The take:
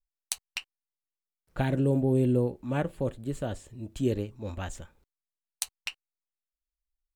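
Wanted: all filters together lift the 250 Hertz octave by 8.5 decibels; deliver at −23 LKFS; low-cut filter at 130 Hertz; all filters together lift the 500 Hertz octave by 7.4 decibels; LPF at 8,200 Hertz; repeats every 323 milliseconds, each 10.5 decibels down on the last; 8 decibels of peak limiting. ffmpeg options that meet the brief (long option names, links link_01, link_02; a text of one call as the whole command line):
ffmpeg -i in.wav -af "highpass=130,lowpass=8200,equalizer=frequency=250:width_type=o:gain=8,equalizer=frequency=500:width_type=o:gain=6.5,alimiter=limit=-15dB:level=0:latency=1,aecho=1:1:323|646|969:0.299|0.0896|0.0269,volume=4dB" out.wav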